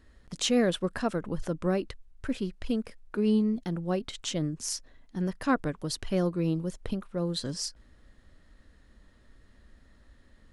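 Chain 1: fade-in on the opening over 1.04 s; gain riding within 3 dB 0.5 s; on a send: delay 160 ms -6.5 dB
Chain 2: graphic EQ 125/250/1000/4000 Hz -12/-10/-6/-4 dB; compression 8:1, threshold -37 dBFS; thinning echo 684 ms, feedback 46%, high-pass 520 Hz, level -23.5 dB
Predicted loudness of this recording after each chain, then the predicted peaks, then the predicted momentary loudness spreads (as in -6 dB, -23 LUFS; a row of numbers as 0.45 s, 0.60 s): -31.0 LUFS, -43.0 LUFS; -14.0 dBFS, -23.0 dBFS; 5 LU, 12 LU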